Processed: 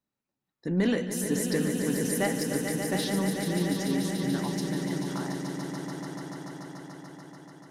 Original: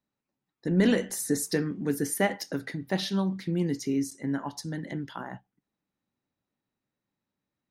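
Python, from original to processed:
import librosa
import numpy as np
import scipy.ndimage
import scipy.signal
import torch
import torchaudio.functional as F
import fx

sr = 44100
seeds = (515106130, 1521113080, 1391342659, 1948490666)

p1 = 10.0 ** (-22.0 / 20.0) * np.tanh(x / 10.0 ** (-22.0 / 20.0))
p2 = x + (p1 * librosa.db_to_amplitude(-7.0))
p3 = fx.echo_swell(p2, sr, ms=145, loudest=5, wet_db=-8.5)
y = p3 * librosa.db_to_amplitude(-5.0)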